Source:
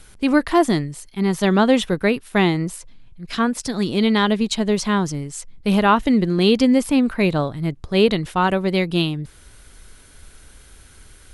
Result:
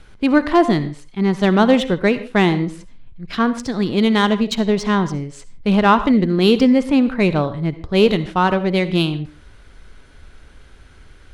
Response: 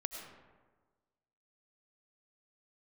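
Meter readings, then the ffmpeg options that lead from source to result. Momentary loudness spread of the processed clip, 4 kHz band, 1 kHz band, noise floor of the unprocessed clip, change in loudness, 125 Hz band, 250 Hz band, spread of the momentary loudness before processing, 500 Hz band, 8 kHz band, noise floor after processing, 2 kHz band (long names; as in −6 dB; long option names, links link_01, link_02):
10 LU, +0.5 dB, +2.5 dB, −47 dBFS, +2.0 dB, +2.0 dB, +2.0 dB, 10 LU, +2.0 dB, −6.0 dB, −45 dBFS, +1.5 dB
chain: -filter_complex "[0:a]adynamicsmooth=sensitivity=1:basefreq=4000,asplit=2[link_01][link_02];[1:a]atrim=start_sample=2205,afade=type=out:start_time=0.32:duration=0.01,atrim=end_sample=14553,asetrate=70560,aresample=44100[link_03];[link_02][link_03]afir=irnorm=-1:irlink=0,volume=-1dB[link_04];[link_01][link_04]amix=inputs=2:normalize=0,volume=-1dB"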